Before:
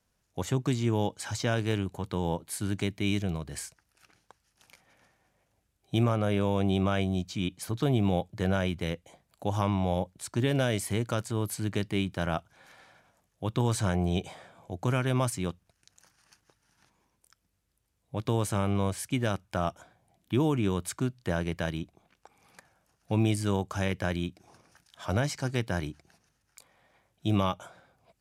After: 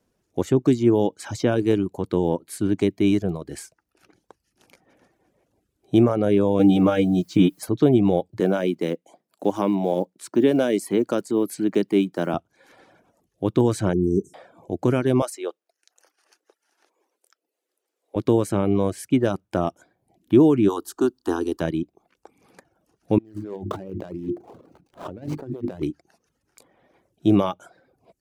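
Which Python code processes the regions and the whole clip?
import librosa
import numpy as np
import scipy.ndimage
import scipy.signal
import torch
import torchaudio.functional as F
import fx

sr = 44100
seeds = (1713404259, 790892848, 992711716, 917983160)

y = fx.chain(x, sr, fx.comb(ms=6.5, depth=0.81),
    fx.transient(attack_db=8, sustain_db=-2),
    fx.quant_dither(seeds[0], bits=10, dither='triangular'), at=(6.59, 7.66))
y = fx.chain(y, sr, fx.block_float(bits=7),
    fx.highpass(hz=170.0, slope=24), at=(8.4, 12.34))
y = fx.chain(y, sr, fx.brickwall_bandstop(low_hz=450.0, high_hz=5300.0),
    fx.doubler(ms=15.0, db=-11.0), at=(13.93, 14.34))
y = fx.chain(y, sr, fx.highpass(hz=430.0, slope=24),
    fx.peak_eq(hz=980.0, db=-4.0, octaves=0.23), at=(15.22, 18.16))
y = fx.spec_clip(y, sr, under_db=16, at=(20.68, 21.6), fade=0.02)
y = fx.fixed_phaser(y, sr, hz=580.0, stages=6, at=(20.68, 21.6), fade=0.02)
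y = fx.chain(y, sr, fx.median_filter(points=25),
    fx.hum_notches(base_hz=50, count=7),
    fx.over_compress(threshold_db=-40.0, ratio=-1.0), at=(23.18, 25.83))
y = fx.dereverb_blind(y, sr, rt60_s=0.55)
y = fx.peak_eq(y, sr, hz=340.0, db=15.0, octaves=1.7)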